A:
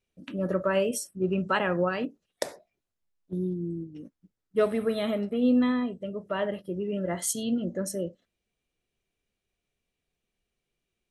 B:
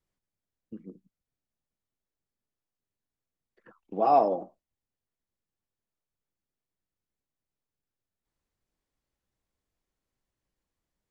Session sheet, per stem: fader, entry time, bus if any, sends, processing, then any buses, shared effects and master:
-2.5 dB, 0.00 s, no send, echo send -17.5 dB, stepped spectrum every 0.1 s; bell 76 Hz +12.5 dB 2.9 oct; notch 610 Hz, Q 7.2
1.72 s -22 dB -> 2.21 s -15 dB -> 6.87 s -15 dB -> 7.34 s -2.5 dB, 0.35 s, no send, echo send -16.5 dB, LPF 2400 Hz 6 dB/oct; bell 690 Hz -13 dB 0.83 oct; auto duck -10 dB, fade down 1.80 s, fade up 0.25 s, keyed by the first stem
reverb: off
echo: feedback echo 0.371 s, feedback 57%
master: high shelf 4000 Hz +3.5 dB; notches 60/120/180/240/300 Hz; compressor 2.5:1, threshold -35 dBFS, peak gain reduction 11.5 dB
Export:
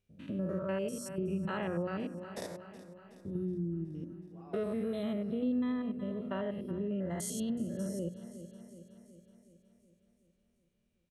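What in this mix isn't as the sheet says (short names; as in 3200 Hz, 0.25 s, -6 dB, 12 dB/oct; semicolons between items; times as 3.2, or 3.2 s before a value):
stem A: missing notch 610 Hz, Q 7.2; master: missing high shelf 4000 Hz +3.5 dB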